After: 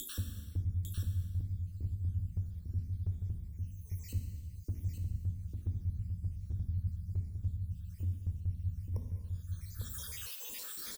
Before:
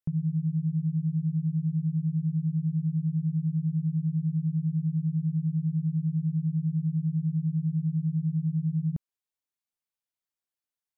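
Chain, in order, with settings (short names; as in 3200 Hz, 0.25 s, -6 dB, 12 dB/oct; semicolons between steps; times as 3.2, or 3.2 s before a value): random spectral dropouts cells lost 75%; upward compressor, threshold -42 dBFS; frequency shift -250 Hz; fixed phaser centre 300 Hz, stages 4; dynamic EQ 130 Hz, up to +5 dB, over -56 dBFS, Q 2.7; echo 0.85 s -7 dB; non-linear reverb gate 0.47 s falling, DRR 4 dB; spectral compressor 2:1; gain +1 dB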